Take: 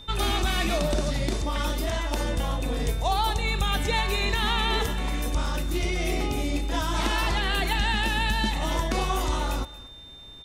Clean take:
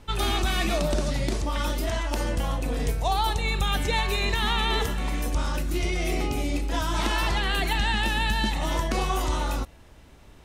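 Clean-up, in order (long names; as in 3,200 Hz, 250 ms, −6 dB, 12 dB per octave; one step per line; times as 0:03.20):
notch filter 3,600 Hz, Q 30
echo removal 232 ms −19 dB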